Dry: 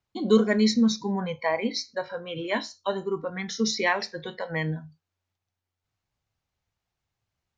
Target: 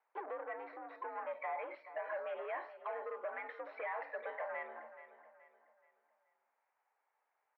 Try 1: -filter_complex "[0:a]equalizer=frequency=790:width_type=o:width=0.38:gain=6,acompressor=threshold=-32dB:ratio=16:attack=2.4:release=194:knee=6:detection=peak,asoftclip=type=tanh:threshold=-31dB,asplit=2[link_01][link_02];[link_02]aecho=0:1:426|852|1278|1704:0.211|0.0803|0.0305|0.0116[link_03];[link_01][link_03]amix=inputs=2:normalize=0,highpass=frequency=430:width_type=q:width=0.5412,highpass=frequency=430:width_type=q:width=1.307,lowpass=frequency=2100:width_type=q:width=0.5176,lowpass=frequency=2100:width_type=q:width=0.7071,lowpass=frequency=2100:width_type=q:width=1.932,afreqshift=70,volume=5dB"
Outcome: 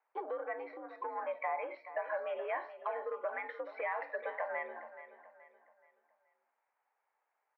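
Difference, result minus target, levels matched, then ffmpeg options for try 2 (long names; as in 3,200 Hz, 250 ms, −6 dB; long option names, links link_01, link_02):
soft clipping: distortion −10 dB
-filter_complex "[0:a]equalizer=frequency=790:width_type=o:width=0.38:gain=6,acompressor=threshold=-32dB:ratio=16:attack=2.4:release=194:knee=6:detection=peak,asoftclip=type=tanh:threshold=-40dB,asplit=2[link_01][link_02];[link_02]aecho=0:1:426|852|1278|1704:0.211|0.0803|0.0305|0.0116[link_03];[link_01][link_03]amix=inputs=2:normalize=0,highpass=frequency=430:width_type=q:width=0.5412,highpass=frequency=430:width_type=q:width=1.307,lowpass=frequency=2100:width_type=q:width=0.5176,lowpass=frequency=2100:width_type=q:width=0.7071,lowpass=frequency=2100:width_type=q:width=1.932,afreqshift=70,volume=5dB"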